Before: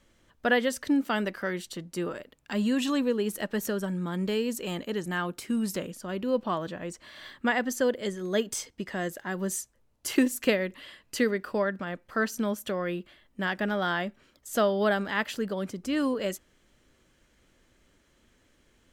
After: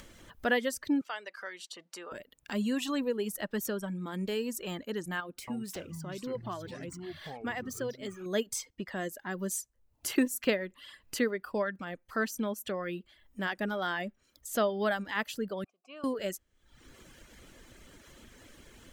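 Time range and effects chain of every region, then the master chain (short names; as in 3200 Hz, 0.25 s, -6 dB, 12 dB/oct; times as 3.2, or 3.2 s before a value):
1.01–2.12 compressor 1.5:1, threshold -34 dBFS + BPF 670–7000 Hz
5.2–8.26 median filter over 3 samples + compressor 1.5:1, threshold -38 dBFS + echoes that change speed 0.275 s, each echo -6 st, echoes 2, each echo -6 dB
15.64–16.04 vowel filter a + low shelf 300 Hz -11 dB
whole clip: reverb removal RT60 0.75 s; high shelf 11000 Hz +6 dB; upward compressor, threshold -36 dBFS; gain -3.5 dB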